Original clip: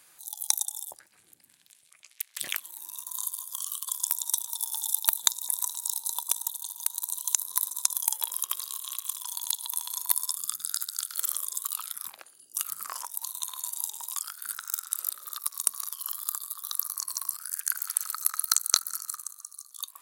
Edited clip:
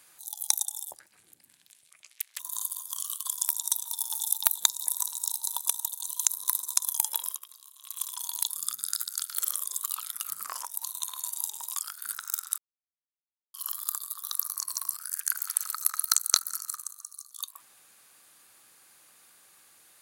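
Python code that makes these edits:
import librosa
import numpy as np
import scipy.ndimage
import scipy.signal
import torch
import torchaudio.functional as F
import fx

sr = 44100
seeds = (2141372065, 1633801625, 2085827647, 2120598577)

y = fx.edit(x, sr, fx.cut(start_s=2.39, length_s=0.62),
    fx.cut(start_s=6.67, length_s=0.46),
    fx.fade_down_up(start_s=8.34, length_s=0.72, db=-16.0, fade_s=0.15),
    fx.cut(start_s=9.58, length_s=0.73),
    fx.cut(start_s=12.02, length_s=0.59),
    fx.silence(start_s=14.98, length_s=0.96), tone=tone)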